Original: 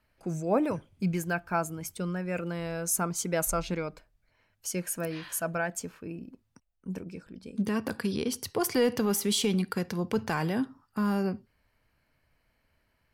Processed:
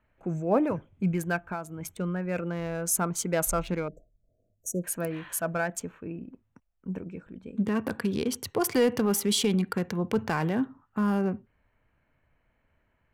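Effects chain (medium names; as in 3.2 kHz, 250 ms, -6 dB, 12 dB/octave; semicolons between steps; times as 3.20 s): local Wiener filter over 9 samples; 1.36–1.80 s: compression 4:1, threshold -34 dBFS, peak gain reduction 10 dB; 3.88–4.84 s: brick-wall FIR band-stop 720–5700 Hz; trim +2 dB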